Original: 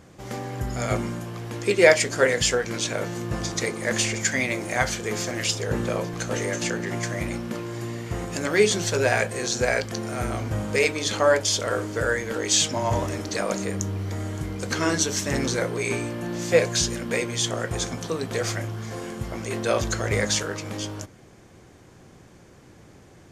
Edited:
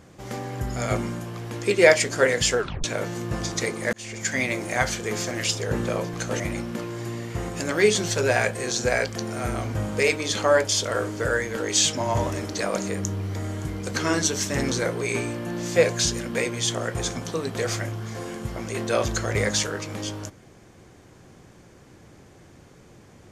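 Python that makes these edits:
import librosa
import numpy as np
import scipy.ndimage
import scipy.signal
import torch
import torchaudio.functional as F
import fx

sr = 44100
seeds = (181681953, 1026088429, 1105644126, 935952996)

y = fx.edit(x, sr, fx.tape_stop(start_s=2.58, length_s=0.26),
    fx.fade_in_span(start_s=3.93, length_s=0.48),
    fx.cut(start_s=6.4, length_s=0.76), tone=tone)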